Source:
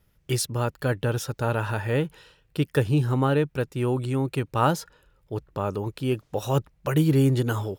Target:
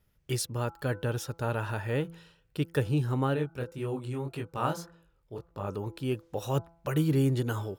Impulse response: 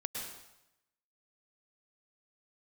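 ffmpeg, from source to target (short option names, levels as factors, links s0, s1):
-filter_complex "[0:a]bandreject=f=167.4:t=h:w=4,bandreject=f=334.8:t=h:w=4,bandreject=f=502.2:t=h:w=4,bandreject=f=669.6:t=h:w=4,bandreject=f=837:t=h:w=4,bandreject=f=1004.4:t=h:w=4,bandreject=f=1171.8:t=h:w=4,bandreject=f=1339.2:t=h:w=4,bandreject=f=1506.6:t=h:w=4,asplit=3[s0][s1][s2];[s0]afade=t=out:st=3.35:d=0.02[s3];[s1]flanger=delay=18:depth=7.2:speed=1.8,afade=t=in:st=3.35:d=0.02,afade=t=out:st=5.67:d=0.02[s4];[s2]afade=t=in:st=5.67:d=0.02[s5];[s3][s4][s5]amix=inputs=3:normalize=0,volume=0.531"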